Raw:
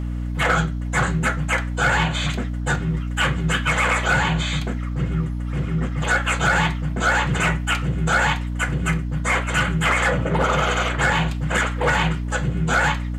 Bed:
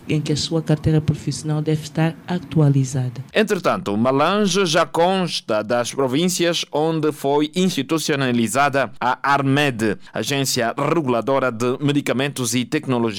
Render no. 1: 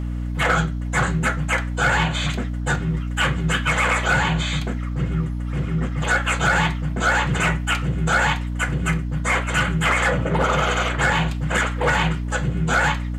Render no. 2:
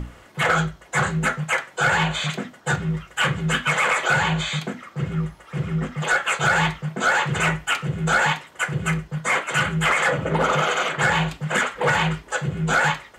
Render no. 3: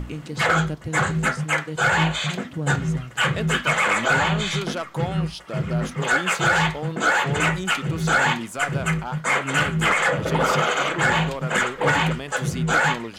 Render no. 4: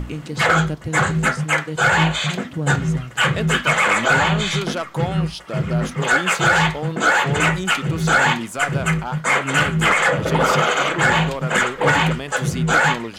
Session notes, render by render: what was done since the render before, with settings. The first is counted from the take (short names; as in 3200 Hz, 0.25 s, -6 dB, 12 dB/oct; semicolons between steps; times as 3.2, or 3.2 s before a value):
nothing audible
notches 60/120/180/240/300 Hz
add bed -13 dB
gain +3.5 dB